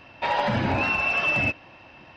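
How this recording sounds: noise floor -50 dBFS; spectral tilt -3.0 dB/oct

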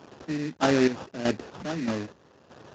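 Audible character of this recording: a quantiser's noise floor 8-bit, dither none; chopped level 1.6 Hz, depth 65%, duty 40%; aliases and images of a low sample rate 2200 Hz, jitter 20%; Speex

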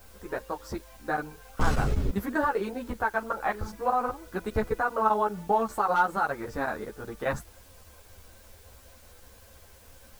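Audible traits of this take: chopped level 5.1 Hz, duty 90%; a quantiser's noise floor 10-bit, dither triangular; a shimmering, thickened sound

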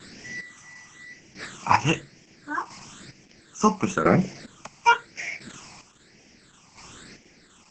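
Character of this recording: phasing stages 8, 1 Hz, lowest notch 470–1200 Hz; chopped level 0.74 Hz, depth 65%, duty 30%; Opus

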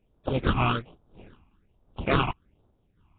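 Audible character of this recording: aliases and images of a low sample rate 1900 Hz, jitter 20%; phasing stages 8, 1.2 Hz, lowest notch 500–2400 Hz; random-step tremolo 3.7 Hz; Nellymoser

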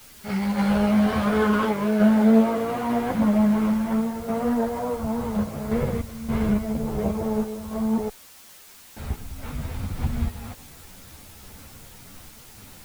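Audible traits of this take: random-step tremolo, depth 80%; a quantiser's noise floor 8-bit, dither triangular; a shimmering, thickened sound

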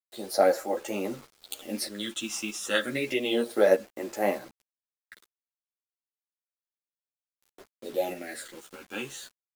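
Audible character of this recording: phasing stages 8, 0.31 Hz, lowest notch 570–3700 Hz; a quantiser's noise floor 8-bit, dither none; tremolo saw up 1.6 Hz, depth 40%; a shimmering, thickened sound

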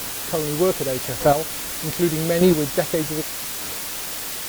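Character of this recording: chopped level 0.83 Hz, depth 65%, duty 10%; a quantiser's noise floor 6-bit, dither triangular; WMA

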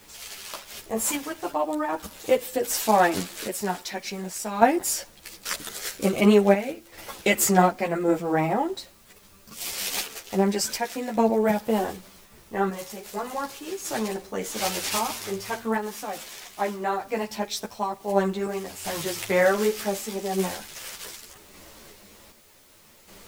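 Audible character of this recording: random-step tremolo 2.6 Hz, depth 75%; a quantiser's noise floor 10-bit, dither triangular; a shimmering, thickened sound

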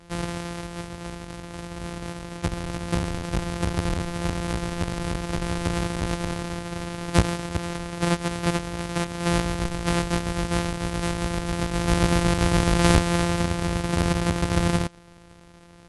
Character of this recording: a buzz of ramps at a fixed pitch in blocks of 256 samples; AC-3

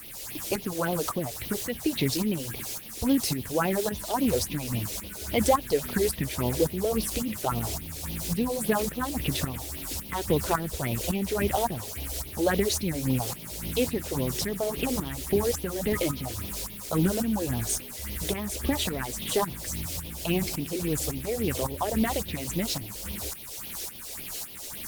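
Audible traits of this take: a quantiser's noise floor 6-bit, dither triangular; tremolo saw up 1.8 Hz, depth 65%; phasing stages 4, 3.6 Hz, lowest notch 170–1500 Hz; Opus

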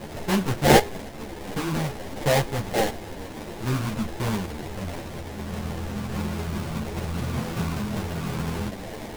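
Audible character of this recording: a quantiser's noise floor 6-bit, dither triangular; phasing stages 6, 0.97 Hz, lowest notch 420–1500 Hz; aliases and images of a low sample rate 1300 Hz, jitter 20%; a shimmering, thickened sound

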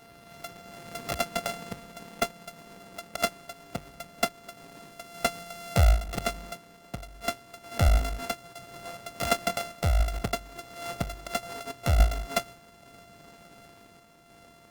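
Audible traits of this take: a buzz of ramps at a fixed pitch in blocks of 64 samples; random-step tremolo; Opus

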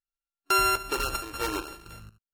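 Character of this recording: a buzz of ramps at a fixed pitch in blocks of 32 samples; random-step tremolo 4.3 Hz, depth 85%; AAC

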